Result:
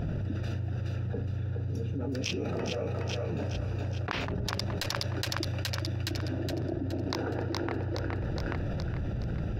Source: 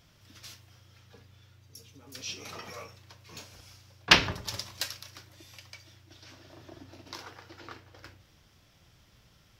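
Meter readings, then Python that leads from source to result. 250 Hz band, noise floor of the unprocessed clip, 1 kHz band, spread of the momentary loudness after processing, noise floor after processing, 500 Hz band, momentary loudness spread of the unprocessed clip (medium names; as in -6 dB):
+11.0 dB, -62 dBFS, -1.0 dB, 2 LU, -35 dBFS, +9.5 dB, 27 LU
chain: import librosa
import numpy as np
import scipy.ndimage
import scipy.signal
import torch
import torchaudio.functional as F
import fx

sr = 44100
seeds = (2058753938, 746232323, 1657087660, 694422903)

p1 = fx.wiener(x, sr, points=41)
p2 = fx.bass_treble(p1, sr, bass_db=0, treble_db=-8)
p3 = fx.schmitt(p2, sr, flips_db=-20.0)
p4 = p2 + (p3 * librosa.db_to_amplitude(-8.0))
p5 = fx.gate_flip(p4, sr, shuts_db=-17.0, range_db=-40)
p6 = p5 + fx.echo_thinned(p5, sr, ms=418, feedback_pct=44, hz=540.0, wet_db=-6, dry=0)
y = fx.env_flatten(p6, sr, amount_pct=100)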